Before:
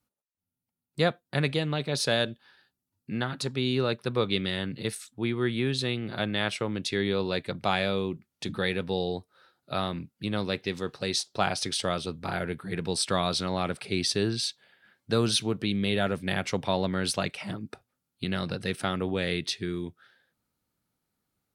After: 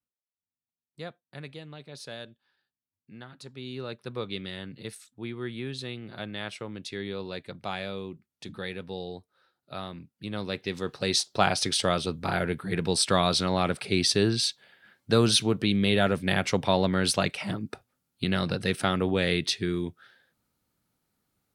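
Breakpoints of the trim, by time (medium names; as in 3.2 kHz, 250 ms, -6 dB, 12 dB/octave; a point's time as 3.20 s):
3.30 s -15 dB
4.09 s -7.5 dB
10.00 s -7.5 dB
11.15 s +3.5 dB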